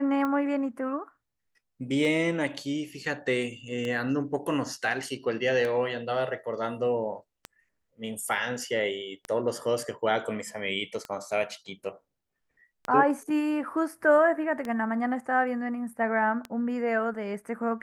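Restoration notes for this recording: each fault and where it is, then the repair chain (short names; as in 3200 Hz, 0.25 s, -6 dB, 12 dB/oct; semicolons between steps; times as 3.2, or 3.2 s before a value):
tick 33 1/3 rpm -19 dBFS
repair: de-click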